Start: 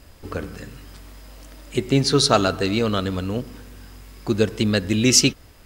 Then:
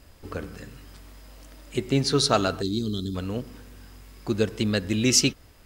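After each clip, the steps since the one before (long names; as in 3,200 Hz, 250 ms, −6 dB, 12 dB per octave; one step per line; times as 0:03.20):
gain on a spectral selection 0:02.62–0:03.15, 440–3,100 Hz −23 dB
level −4.5 dB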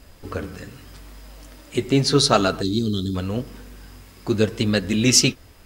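flanger 0.82 Hz, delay 4 ms, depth 7.8 ms, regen −51%
level +8.5 dB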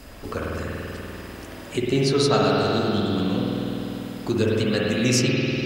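spring reverb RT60 2.9 s, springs 49 ms, chirp 75 ms, DRR −4.5 dB
multiband upward and downward compressor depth 40%
level −5 dB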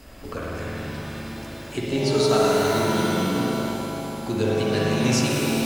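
reverb with rising layers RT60 2 s, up +7 semitones, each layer −2 dB, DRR 4 dB
level −3.5 dB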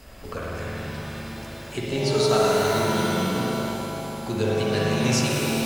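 parametric band 290 Hz −7 dB 0.39 octaves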